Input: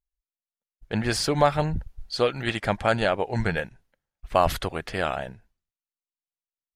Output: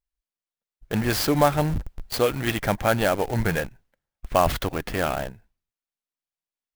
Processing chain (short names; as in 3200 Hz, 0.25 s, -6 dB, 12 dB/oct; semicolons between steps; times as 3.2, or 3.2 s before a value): dynamic EQ 290 Hz, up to +5 dB, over -47 dBFS, Q 7.4; in parallel at -8 dB: Schmitt trigger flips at -33.5 dBFS; on the sum: clock jitter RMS 0.028 ms